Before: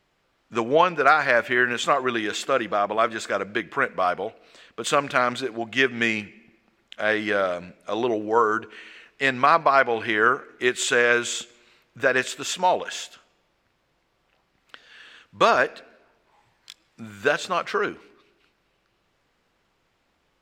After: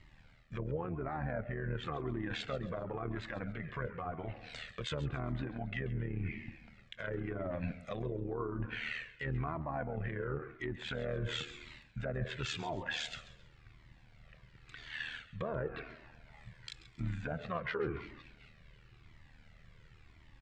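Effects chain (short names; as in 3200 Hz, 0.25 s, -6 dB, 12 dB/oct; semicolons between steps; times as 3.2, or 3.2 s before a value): RIAA curve playback; treble ducked by the level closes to 580 Hz, closed at -17 dBFS; graphic EQ 125/2000/4000/8000 Hz +10/+12/+8/+12 dB; reverse; compressor 8:1, threshold -27 dBFS, peak gain reduction 15.5 dB; reverse; limiter -25 dBFS, peak gain reduction 9.5 dB; AM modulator 77 Hz, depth 60%; on a send: feedback echo 0.135 s, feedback 33%, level -15.5 dB; on the sum: cascading flanger falling 0.94 Hz; gain +3.5 dB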